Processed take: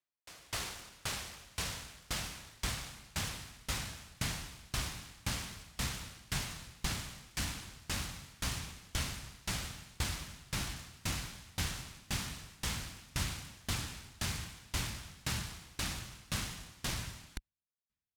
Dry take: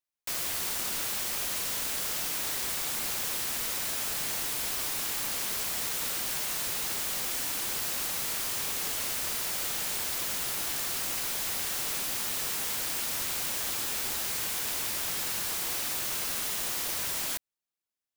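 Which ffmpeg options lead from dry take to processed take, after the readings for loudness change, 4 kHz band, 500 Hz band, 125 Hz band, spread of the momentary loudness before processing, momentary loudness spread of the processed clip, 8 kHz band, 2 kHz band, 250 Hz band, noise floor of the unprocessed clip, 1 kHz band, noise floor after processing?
−10.5 dB, −7.0 dB, −8.0 dB, +9.0 dB, 0 LU, 6 LU, −11.0 dB, −5.5 dB, +1.0 dB, below −85 dBFS, −6.5 dB, below −85 dBFS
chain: -af "highpass=40,asubboost=boost=10:cutoff=140,adynamicsmooth=sensitivity=6.5:basefreq=4900,aeval=exprs='val(0)*pow(10,-29*if(lt(mod(1.9*n/s,1),2*abs(1.9)/1000),1-mod(1.9*n/s,1)/(2*abs(1.9)/1000),(mod(1.9*n/s,1)-2*abs(1.9)/1000)/(1-2*abs(1.9)/1000))/20)':channel_layout=same,volume=3.5dB"

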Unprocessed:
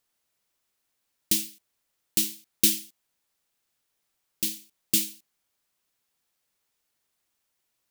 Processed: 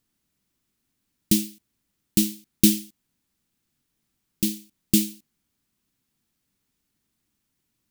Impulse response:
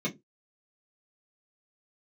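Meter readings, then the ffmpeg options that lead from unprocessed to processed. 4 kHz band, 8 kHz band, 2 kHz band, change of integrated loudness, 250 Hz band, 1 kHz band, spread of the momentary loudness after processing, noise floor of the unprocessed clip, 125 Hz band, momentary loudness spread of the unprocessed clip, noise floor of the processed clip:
0.0 dB, 0.0 dB, −0.5 dB, +2.5 dB, +13.5 dB, can't be measured, 12 LU, −78 dBFS, +15.0 dB, 12 LU, −78 dBFS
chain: -af "lowshelf=frequency=370:width_type=q:width=1.5:gain=12.5"

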